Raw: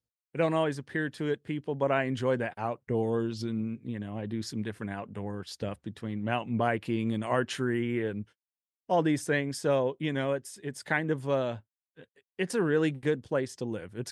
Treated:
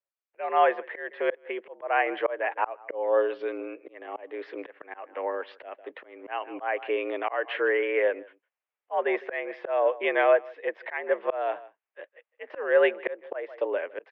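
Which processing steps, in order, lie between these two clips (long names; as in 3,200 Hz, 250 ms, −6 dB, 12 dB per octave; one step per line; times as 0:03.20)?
automatic gain control gain up to 11.5 dB
single-sideband voice off tune +78 Hz 380–2,600 Hz
slap from a distant wall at 27 metres, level −23 dB
volume swells 304 ms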